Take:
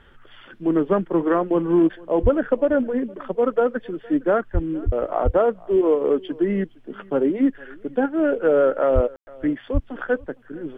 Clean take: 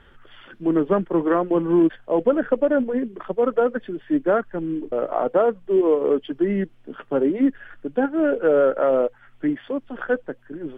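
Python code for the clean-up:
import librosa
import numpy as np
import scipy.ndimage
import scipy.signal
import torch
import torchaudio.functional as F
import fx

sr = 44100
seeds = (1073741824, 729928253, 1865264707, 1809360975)

y = fx.fix_deplosive(x, sr, at_s=(2.22, 4.53, 4.85, 5.24, 8.94, 9.73))
y = fx.fix_ambience(y, sr, seeds[0], print_start_s=0.0, print_end_s=0.5, start_s=9.16, end_s=9.27)
y = fx.fix_echo_inverse(y, sr, delay_ms=462, level_db=-23.5)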